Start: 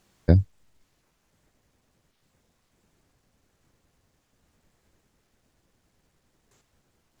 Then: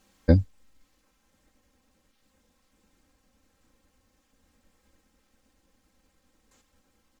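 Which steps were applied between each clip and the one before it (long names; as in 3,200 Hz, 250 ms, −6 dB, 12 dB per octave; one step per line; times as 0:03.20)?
notch filter 700 Hz, Q 13
comb filter 3.8 ms, depth 82%
level −1 dB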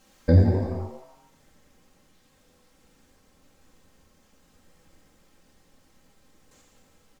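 brickwall limiter −13.5 dBFS, peak gain reduction 8.5 dB
on a send: echo with shifted repeats 85 ms, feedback 54%, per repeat +140 Hz, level −10.5 dB
on the sum: reverb whose tail is shaped and stops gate 500 ms falling, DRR 0.5 dB
level +3.5 dB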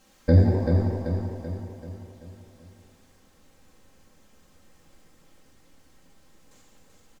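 repeating echo 385 ms, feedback 51%, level −5 dB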